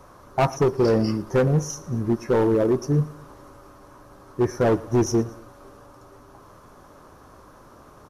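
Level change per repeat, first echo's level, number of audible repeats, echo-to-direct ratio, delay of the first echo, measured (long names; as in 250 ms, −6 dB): −6.0 dB, −21.0 dB, 2, −20.0 dB, 113 ms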